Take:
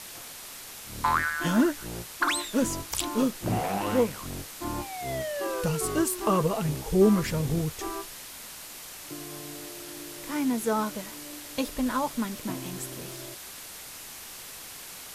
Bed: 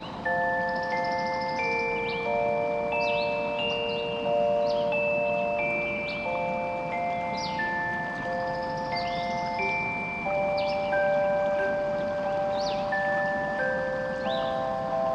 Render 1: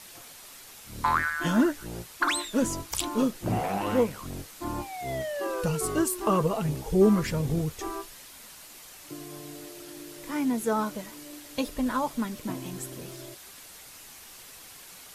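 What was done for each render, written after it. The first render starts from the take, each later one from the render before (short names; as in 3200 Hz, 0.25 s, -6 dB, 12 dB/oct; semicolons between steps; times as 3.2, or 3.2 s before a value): denoiser 6 dB, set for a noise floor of -43 dBFS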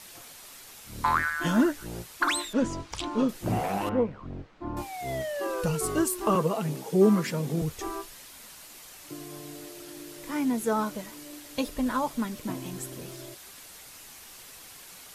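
2.53–3.29 air absorption 110 m; 3.89–4.77 tape spacing loss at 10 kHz 42 dB; 6.35–7.62 steep high-pass 150 Hz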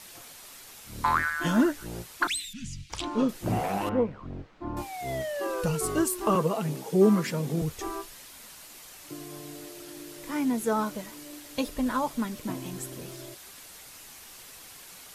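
2.27–2.9 Chebyshev band-stop 170–2400 Hz, order 3; 10.87–11.54 companded quantiser 8-bit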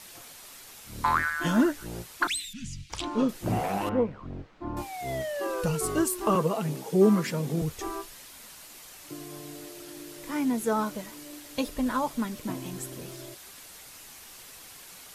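nothing audible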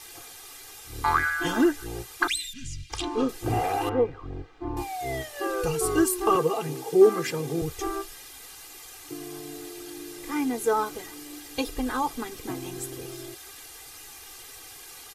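comb 2.5 ms, depth 91%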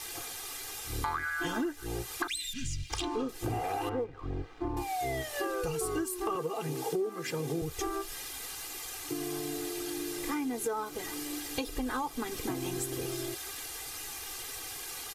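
compressor 8:1, threshold -34 dBFS, peak gain reduction 22 dB; sample leveller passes 1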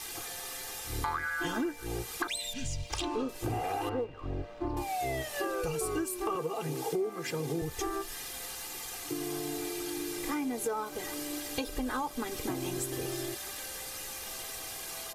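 add bed -25 dB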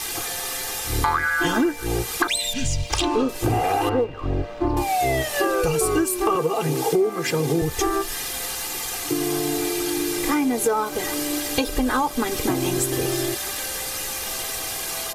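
gain +12 dB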